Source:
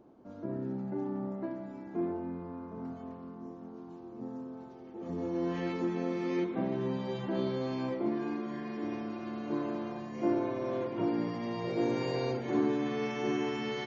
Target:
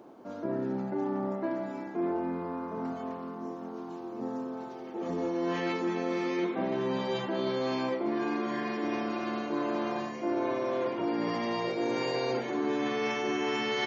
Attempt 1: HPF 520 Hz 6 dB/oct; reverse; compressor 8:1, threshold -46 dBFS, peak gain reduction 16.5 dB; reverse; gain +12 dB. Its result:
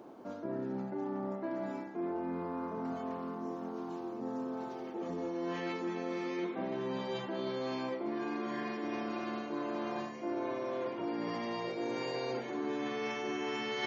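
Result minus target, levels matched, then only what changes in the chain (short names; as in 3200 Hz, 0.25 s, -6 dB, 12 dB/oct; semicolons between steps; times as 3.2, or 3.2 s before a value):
compressor: peak gain reduction +6 dB
change: compressor 8:1, threshold -39 dBFS, peak gain reduction 10.5 dB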